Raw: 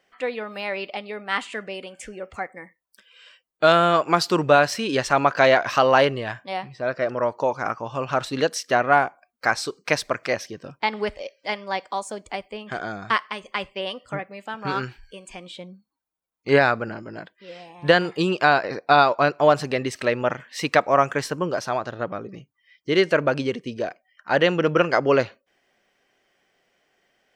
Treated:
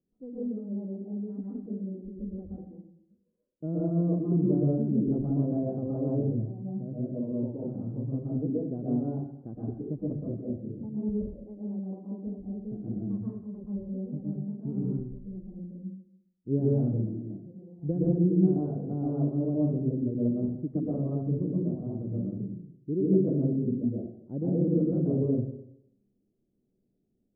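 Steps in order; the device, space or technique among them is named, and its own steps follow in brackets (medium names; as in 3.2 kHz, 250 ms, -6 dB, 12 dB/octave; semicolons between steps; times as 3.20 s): next room (low-pass 290 Hz 24 dB/octave; reverberation RT60 0.75 s, pre-delay 112 ms, DRR -5.5 dB); trim -2 dB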